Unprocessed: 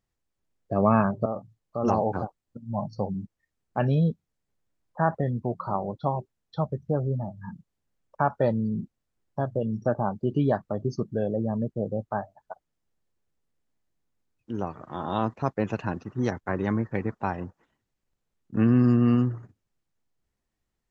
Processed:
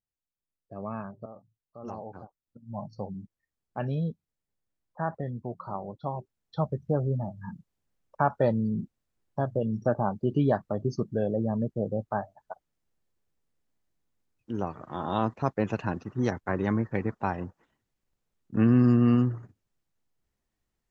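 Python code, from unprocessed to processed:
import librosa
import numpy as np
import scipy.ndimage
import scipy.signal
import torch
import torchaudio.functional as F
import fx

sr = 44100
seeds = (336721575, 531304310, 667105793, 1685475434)

y = fx.gain(x, sr, db=fx.line((2.22, -15.5), (2.73, -7.0), (6.02, -7.0), (6.63, -0.5)))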